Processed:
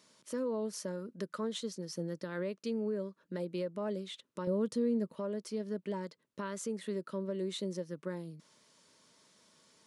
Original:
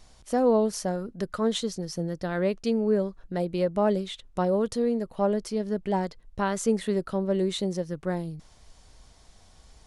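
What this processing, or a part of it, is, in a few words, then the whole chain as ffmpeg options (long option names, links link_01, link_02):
PA system with an anti-feedback notch: -filter_complex "[0:a]highpass=frequency=170:width=0.5412,highpass=frequency=170:width=1.3066,asuperstop=centerf=750:order=4:qfactor=3.6,alimiter=limit=-23dB:level=0:latency=1:release=411,asettb=1/sr,asplit=3[link_01][link_02][link_03];[link_01]atrim=end=4.474[link_04];[link_02]atrim=start=4.47:end=5.15,asetpts=PTS-STARTPTS,afade=type=in:duration=0.004:curve=qsin,afade=type=out:start_time=0.676:duration=0.004:curve=qsin,lowshelf=frequency=250:gain=12[link_05];[link_03]atrim=start=5.146[link_06];[link_04][link_05]acrossfade=duration=0.004:curve1=hsin:curve2=qsin[link_07];[link_07][link_06]acrossfade=duration=0.004:curve1=qsin:curve2=hsin,volume=-5dB"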